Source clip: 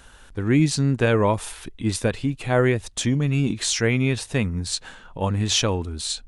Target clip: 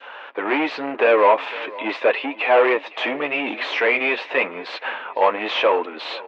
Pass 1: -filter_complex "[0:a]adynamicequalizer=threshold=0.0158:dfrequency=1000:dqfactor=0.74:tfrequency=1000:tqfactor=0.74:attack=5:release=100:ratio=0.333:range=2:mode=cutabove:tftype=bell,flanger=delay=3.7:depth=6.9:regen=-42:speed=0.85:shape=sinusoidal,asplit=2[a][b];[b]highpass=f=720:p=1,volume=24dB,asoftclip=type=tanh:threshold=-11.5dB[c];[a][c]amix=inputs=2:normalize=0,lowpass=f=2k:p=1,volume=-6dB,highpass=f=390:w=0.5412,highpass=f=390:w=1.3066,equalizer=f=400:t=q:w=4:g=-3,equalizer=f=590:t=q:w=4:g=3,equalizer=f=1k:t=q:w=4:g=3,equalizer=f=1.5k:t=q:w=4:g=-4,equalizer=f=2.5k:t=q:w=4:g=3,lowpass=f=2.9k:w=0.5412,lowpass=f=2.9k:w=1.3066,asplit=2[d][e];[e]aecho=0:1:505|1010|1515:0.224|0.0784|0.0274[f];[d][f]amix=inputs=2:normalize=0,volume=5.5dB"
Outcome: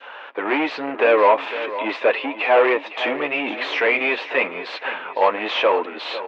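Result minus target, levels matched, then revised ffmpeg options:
echo-to-direct +6.5 dB
-filter_complex "[0:a]adynamicequalizer=threshold=0.0158:dfrequency=1000:dqfactor=0.74:tfrequency=1000:tqfactor=0.74:attack=5:release=100:ratio=0.333:range=2:mode=cutabove:tftype=bell,flanger=delay=3.7:depth=6.9:regen=-42:speed=0.85:shape=sinusoidal,asplit=2[a][b];[b]highpass=f=720:p=1,volume=24dB,asoftclip=type=tanh:threshold=-11.5dB[c];[a][c]amix=inputs=2:normalize=0,lowpass=f=2k:p=1,volume=-6dB,highpass=f=390:w=0.5412,highpass=f=390:w=1.3066,equalizer=f=400:t=q:w=4:g=-3,equalizer=f=590:t=q:w=4:g=3,equalizer=f=1k:t=q:w=4:g=3,equalizer=f=1.5k:t=q:w=4:g=-4,equalizer=f=2.5k:t=q:w=4:g=3,lowpass=f=2.9k:w=0.5412,lowpass=f=2.9k:w=1.3066,asplit=2[d][e];[e]aecho=0:1:505|1010|1515:0.106|0.0371|0.013[f];[d][f]amix=inputs=2:normalize=0,volume=5.5dB"

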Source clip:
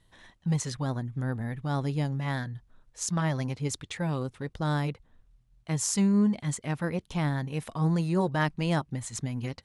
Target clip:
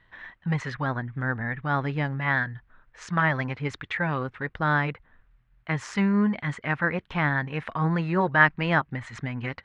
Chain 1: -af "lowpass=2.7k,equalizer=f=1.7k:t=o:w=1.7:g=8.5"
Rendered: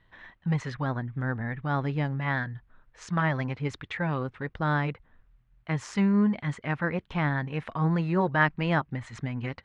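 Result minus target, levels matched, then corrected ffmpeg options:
2000 Hz band -3.5 dB
-af "lowpass=2.7k,equalizer=f=1.7k:t=o:w=1.7:g=15"

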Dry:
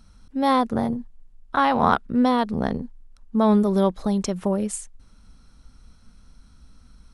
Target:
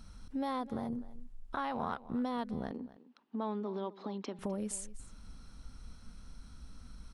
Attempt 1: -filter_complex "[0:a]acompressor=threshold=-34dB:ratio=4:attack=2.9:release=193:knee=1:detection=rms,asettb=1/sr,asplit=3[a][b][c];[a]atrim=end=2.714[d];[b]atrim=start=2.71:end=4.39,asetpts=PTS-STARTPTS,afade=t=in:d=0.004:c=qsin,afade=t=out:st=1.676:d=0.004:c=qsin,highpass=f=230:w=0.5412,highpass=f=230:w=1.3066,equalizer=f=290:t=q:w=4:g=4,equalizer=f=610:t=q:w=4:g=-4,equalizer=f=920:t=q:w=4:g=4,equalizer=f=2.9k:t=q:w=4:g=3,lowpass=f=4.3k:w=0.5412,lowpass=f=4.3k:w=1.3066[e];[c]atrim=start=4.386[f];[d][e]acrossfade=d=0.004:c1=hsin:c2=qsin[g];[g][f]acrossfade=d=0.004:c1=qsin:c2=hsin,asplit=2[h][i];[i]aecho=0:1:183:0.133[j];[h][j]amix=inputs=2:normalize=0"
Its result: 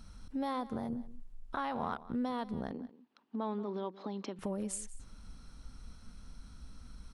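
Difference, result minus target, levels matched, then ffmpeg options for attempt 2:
echo 72 ms early
-filter_complex "[0:a]acompressor=threshold=-34dB:ratio=4:attack=2.9:release=193:knee=1:detection=rms,asettb=1/sr,asplit=3[a][b][c];[a]atrim=end=2.714[d];[b]atrim=start=2.71:end=4.39,asetpts=PTS-STARTPTS,afade=t=in:d=0.004:c=qsin,afade=t=out:st=1.676:d=0.004:c=qsin,highpass=f=230:w=0.5412,highpass=f=230:w=1.3066,equalizer=f=290:t=q:w=4:g=4,equalizer=f=610:t=q:w=4:g=-4,equalizer=f=920:t=q:w=4:g=4,equalizer=f=2.9k:t=q:w=4:g=3,lowpass=f=4.3k:w=0.5412,lowpass=f=4.3k:w=1.3066[e];[c]atrim=start=4.386[f];[d][e]acrossfade=d=0.004:c1=hsin:c2=qsin[g];[g][f]acrossfade=d=0.004:c1=qsin:c2=hsin,asplit=2[h][i];[i]aecho=0:1:255:0.133[j];[h][j]amix=inputs=2:normalize=0"

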